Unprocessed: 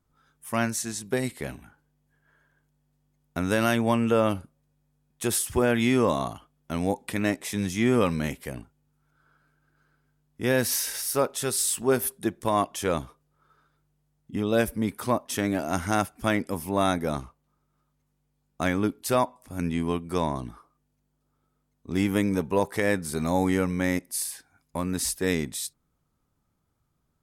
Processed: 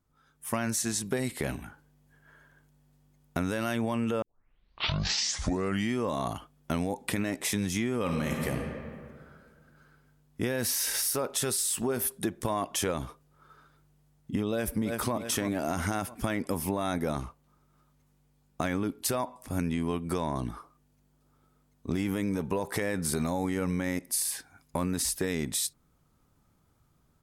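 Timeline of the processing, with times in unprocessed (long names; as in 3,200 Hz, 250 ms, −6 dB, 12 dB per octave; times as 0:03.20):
0:04.22: tape start 1.79 s
0:08.01–0:08.55: thrown reverb, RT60 1.9 s, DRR 5.5 dB
0:14.52–0:15.15: delay throw 330 ms, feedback 35%, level −12 dB
whole clip: automatic gain control gain up to 9 dB; brickwall limiter −12.5 dBFS; downward compressor, threshold −24 dBFS; level −2 dB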